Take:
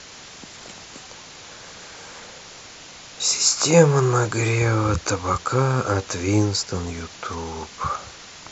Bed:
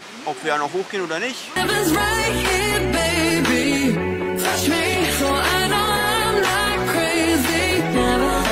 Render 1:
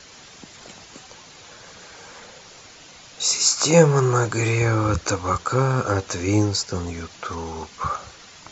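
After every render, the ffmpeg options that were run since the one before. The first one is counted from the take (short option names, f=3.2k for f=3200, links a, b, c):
-af "afftdn=nr=6:nf=-42"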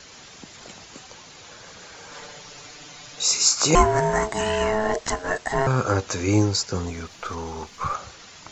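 -filter_complex "[0:a]asettb=1/sr,asplit=3[a][b][c];[a]atrim=end=2.114[d];[b]atrim=start=2.11:end=3.21,asetpts=PTS-STARTPTS,afade=t=in:d=0.004:c=qsin,afade=t=out:st=1.096:d=0.004:c=qsin,aecho=1:1:6.8:0.89,atrim=end_sample=48510[e];[c]atrim=start=3.206[f];[d][e]acrossfade=d=0.004:c1=hsin:c2=qsin[g];[g][f]acrossfade=d=0.004:c1=qsin:c2=hsin,asettb=1/sr,asplit=3[h][i][j];[h]atrim=end=3.754[k];[i]atrim=start=3.75:end=5.67,asetpts=PTS-STARTPTS,afade=t=in:d=0.004:c=qsin,afade=t=out:st=1.916:d=0.004:c=qsin,aeval=exprs='val(0)*sin(2*PI*540*n/s)':c=same[l];[j]atrim=start=5.666[m];[k][l]acrossfade=d=0.004:c1=hsin:c2=qsin[n];[n][m]acrossfade=d=0.004:c1=qsin:c2=hsin,asettb=1/sr,asplit=3[o][p][q];[o]atrim=end=6.894[r];[p]atrim=start=6.89:end=7.94,asetpts=PTS-STARTPTS,afade=t=in:d=0.004:c=qsin,afade=t=out:st=1.046:d=0.004:c=qsin,aeval=exprs='if(lt(val(0),0),0.708*val(0),val(0))':c=same[s];[q]atrim=start=7.936[t];[r][s]acrossfade=d=0.004:c1=hsin:c2=qsin[u];[u][t]acrossfade=d=0.004:c1=qsin:c2=hsin"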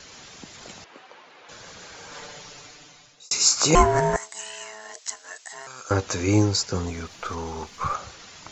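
-filter_complex "[0:a]asettb=1/sr,asplit=3[a][b][c];[a]atrim=end=0.844[d];[b]atrim=start=0.84:end=1.49,asetpts=PTS-STARTPTS,afade=t=in:d=0.004:c=qsin,afade=t=out:st=0.646:d=0.004:c=qsin,highpass=370,lowpass=2.4k[e];[c]atrim=start=1.486[f];[d][e]acrossfade=d=0.004:c1=hsin:c2=qsin[g];[g][f]acrossfade=d=0.004:c1=qsin:c2=hsin,asettb=1/sr,asplit=3[h][i][j];[h]atrim=end=4.164[k];[i]atrim=start=4.16:end=5.91,asetpts=PTS-STARTPTS,afade=t=in:d=0.004:c=qsin,afade=t=out:st=1.746:d=0.004:c=qsin,aderivative[l];[j]atrim=start=5.906[m];[k][l]acrossfade=d=0.004:c1=hsin:c2=qsin[n];[n][m]acrossfade=d=0.004:c1=qsin:c2=hsin,asplit=2[o][p];[o]atrim=end=3.31,asetpts=PTS-STARTPTS,afade=t=out:st=2.42:d=0.89[q];[p]atrim=start=3.31,asetpts=PTS-STARTPTS,afade=t=in:d=0.004:c=hsin[r];[q][r]concat=n=2:v=0:a=1"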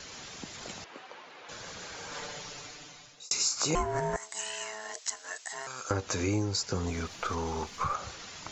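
-af "acompressor=threshold=-28dB:ratio=4"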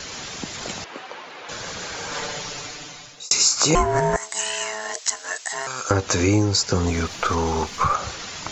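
-af "volume=11dB,alimiter=limit=-3dB:level=0:latency=1"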